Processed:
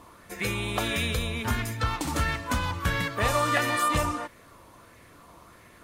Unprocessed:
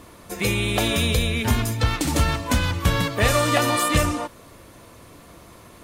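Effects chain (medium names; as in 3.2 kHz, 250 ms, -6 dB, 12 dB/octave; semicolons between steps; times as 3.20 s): sweeping bell 1.5 Hz 920–2000 Hz +10 dB; trim -8 dB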